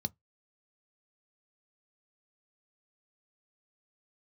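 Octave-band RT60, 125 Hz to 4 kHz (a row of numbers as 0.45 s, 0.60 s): 0.20 s, 0.15 s, 0.15 s, 0.15 s, 0.15 s, 0.10 s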